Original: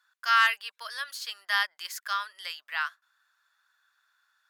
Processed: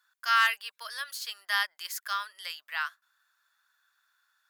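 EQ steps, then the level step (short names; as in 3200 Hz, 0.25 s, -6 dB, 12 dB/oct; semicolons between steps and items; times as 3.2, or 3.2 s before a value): high shelf 9100 Hz +8.5 dB; -2.0 dB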